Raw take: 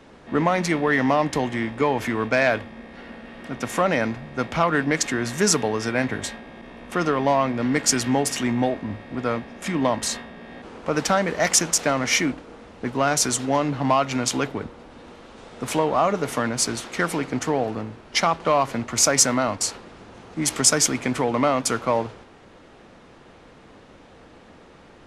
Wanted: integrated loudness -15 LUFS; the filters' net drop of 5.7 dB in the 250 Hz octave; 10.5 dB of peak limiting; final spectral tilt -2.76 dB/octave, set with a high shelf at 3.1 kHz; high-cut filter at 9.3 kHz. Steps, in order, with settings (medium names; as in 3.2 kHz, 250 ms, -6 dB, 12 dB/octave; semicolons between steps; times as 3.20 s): low-pass 9.3 kHz; peaking EQ 250 Hz -7 dB; treble shelf 3.1 kHz +5 dB; trim +9.5 dB; peak limiter -2 dBFS